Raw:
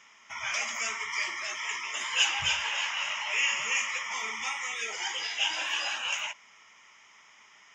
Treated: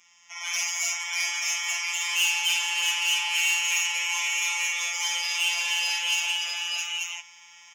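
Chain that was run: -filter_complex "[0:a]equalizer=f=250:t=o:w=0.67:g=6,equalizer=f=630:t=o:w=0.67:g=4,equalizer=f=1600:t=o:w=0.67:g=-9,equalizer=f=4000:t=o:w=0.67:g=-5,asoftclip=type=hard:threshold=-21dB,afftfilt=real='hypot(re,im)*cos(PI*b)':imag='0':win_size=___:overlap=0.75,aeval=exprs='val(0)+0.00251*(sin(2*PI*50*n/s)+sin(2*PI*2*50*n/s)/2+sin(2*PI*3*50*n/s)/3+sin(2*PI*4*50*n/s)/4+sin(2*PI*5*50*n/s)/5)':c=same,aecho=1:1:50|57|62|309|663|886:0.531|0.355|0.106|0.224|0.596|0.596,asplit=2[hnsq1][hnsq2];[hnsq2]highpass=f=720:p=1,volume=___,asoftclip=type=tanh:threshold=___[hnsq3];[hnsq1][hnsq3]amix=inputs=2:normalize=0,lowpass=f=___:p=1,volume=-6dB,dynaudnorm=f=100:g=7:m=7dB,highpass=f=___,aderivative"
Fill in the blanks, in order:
1024, 19dB, -10.5dB, 3600, 59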